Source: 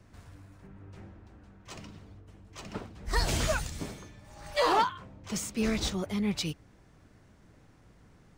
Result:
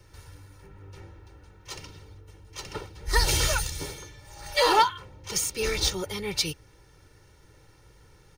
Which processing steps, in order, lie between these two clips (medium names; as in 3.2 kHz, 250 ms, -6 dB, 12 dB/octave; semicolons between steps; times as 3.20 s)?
treble shelf 3.1 kHz +10 dB; band-stop 7.6 kHz, Q 5.6; comb 2.2 ms, depth 83%